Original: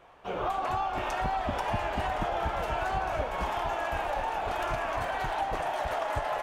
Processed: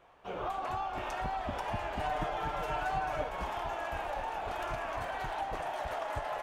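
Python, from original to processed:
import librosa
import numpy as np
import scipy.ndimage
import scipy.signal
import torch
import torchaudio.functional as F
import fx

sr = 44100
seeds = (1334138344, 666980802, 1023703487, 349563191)

y = fx.comb(x, sr, ms=6.7, depth=0.71, at=(2.0, 3.29))
y = y * librosa.db_to_amplitude(-5.5)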